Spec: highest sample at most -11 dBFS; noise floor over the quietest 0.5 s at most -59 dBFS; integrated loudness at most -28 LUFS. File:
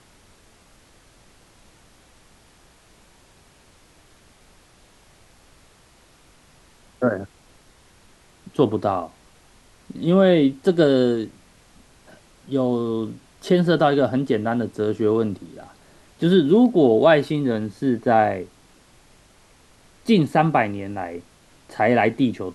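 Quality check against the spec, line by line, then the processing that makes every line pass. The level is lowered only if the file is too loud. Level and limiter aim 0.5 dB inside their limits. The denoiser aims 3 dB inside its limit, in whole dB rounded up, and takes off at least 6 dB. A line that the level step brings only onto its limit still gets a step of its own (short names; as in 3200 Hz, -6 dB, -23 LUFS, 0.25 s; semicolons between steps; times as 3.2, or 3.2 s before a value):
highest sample -4.0 dBFS: fail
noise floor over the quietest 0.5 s -54 dBFS: fail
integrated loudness -20.0 LUFS: fail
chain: gain -8.5 dB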